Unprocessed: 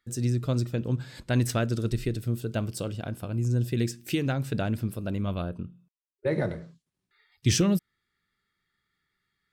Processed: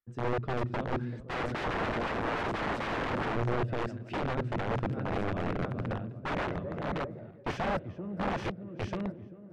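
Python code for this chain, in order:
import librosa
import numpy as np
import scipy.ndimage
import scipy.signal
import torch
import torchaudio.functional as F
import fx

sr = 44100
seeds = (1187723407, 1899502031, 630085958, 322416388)

y = fx.reverse_delay_fb(x, sr, ms=665, feedback_pct=58, wet_db=-9.0)
y = fx.leveller(y, sr, passes=1)
y = fx.echo_tape(y, sr, ms=387, feedback_pct=71, wet_db=-11.0, lp_hz=1100.0, drive_db=13.0, wow_cents=17)
y = fx.rider(y, sr, range_db=5, speed_s=0.5)
y = fx.small_body(y, sr, hz=(220.0, 380.0, 570.0, 1400.0), ring_ms=25, db=12, at=(1.29, 3.36))
y = (np.mod(10.0 ** (19.5 / 20.0) * y + 1.0, 2.0) - 1.0) / 10.0 ** (19.5 / 20.0)
y = scipy.signal.sosfilt(scipy.signal.butter(2, 1900.0, 'lowpass', fs=sr, output='sos'), y)
y = fx.band_widen(y, sr, depth_pct=40)
y = F.gain(torch.from_numpy(y), -5.5).numpy()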